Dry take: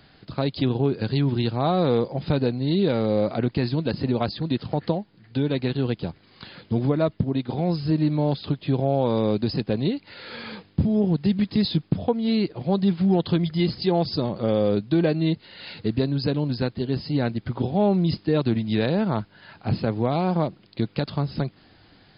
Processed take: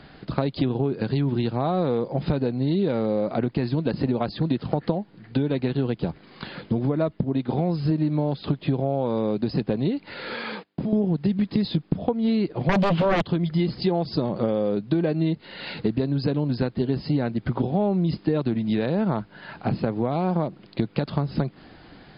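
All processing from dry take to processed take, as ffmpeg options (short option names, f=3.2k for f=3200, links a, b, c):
-filter_complex "[0:a]asettb=1/sr,asplit=3[a][b][c];[a]atrim=end=10.344[d];[b]atrim=start=10.34:end=10.93,asetpts=PTS-STARTPTS,afade=t=in:d=0.004:c=qsin,afade=t=out:st=0.586:d=0.004:c=qsin,agate=range=-20dB:threshold=-47dB:ratio=16:release=100:detection=peak,highpass=f=440:p=1,acompressor=threshold=-32dB:ratio=3:attack=3.2:release=140:knee=1:detection=peak[e];[c]atrim=start=10.926[f];[d][e]acrossfade=d=0.004:c1=hsin:c2=qsin[g];[g][f]acrossfade=d=0.004:c1=qsin:c2=hsin,asettb=1/sr,asplit=3[h][i][j];[h]atrim=end=12.694[k];[i]atrim=start=12.69:end=13.22,asetpts=PTS-STARTPTS,afade=t=in:d=0.004:c=qsin,afade=t=out:st=0.526:d=0.004:c=qsin,acrossover=split=3100[l][m];[m]acompressor=threshold=-50dB:ratio=4:attack=1:release=60[n];[l][n]amix=inputs=2:normalize=0,equalizer=f=3k:w=3.3:g=11.5,aeval=exprs='0.299*sin(PI/2*4.47*val(0)/0.299)':c=same[o];[j]atrim=start=13.216[p];[k][o]acrossfade=d=0.004:c1=hsin:c2=qsin[q];[q][p]acrossfade=d=0.004:c1=qsin:c2=hsin,acompressor=threshold=-27dB:ratio=10,lowpass=f=2k:p=1,equalizer=f=96:t=o:w=0.25:g=-15,volume=8.5dB"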